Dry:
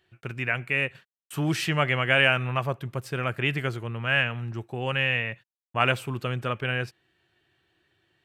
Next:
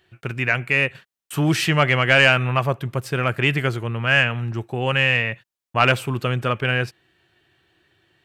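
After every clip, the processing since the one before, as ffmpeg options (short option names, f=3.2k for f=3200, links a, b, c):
-af "acontrast=78"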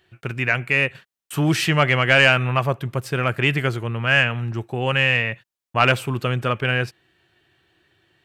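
-af anull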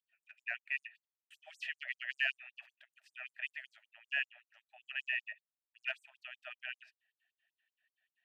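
-filter_complex "[0:a]asplit=3[a][b][c];[a]bandpass=f=530:t=q:w=8,volume=0dB[d];[b]bandpass=f=1.84k:t=q:w=8,volume=-6dB[e];[c]bandpass=f=2.48k:t=q:w=8,volume=-9dB[f];[d][e][f]amix=inputs=3:normalize=0,afftfilt=real='re*gte(b*sr/1024,580*pow(6900/580,0.5+0.5*sin(2*PI*5.2*pts/sr)))':imag='im*gte(b*sr/1024,580*pow(6900/580,0.5+0.5*sin(2*PI*5.2*pts/sr)))':win_size=1024:overlap=0.75,volume=-6dB"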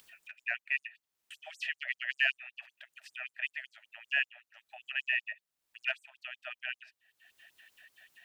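-af "acompressor=mode=upward:threshold=-47dB:ratio=2.5,volume=5dB"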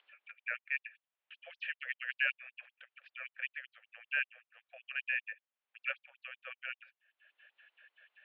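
-af "highpass=f=590:t=q:w=0.5412,highpass=f=590:t=q:w=1.307,lowpass=f=3.4k:t=q:w=0.5176,lowpass=f=3.4k:t=q:w=0.7071,lowpass=f=3.4k:t=q:w=1.932,afreqshift=-100,volume=-3.5dB"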